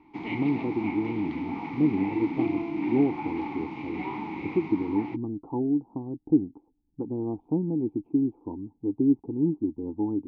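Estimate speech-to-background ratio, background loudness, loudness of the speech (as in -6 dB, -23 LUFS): 4.0 dB, -33.0 LUFS, -29.0 LUFS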